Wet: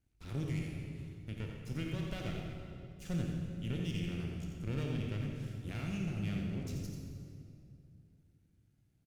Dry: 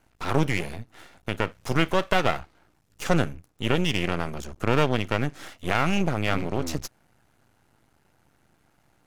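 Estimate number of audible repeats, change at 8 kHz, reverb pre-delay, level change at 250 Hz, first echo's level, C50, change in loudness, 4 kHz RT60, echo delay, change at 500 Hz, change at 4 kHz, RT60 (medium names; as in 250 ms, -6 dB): 1, -15.5 dB, 20 ms, -10.5 dB, -6.5 dB, 0.5 dB, -13.0 dB, 1.8 s, 87 ms, -19.0 dB, -17.5 dB, 2.5 s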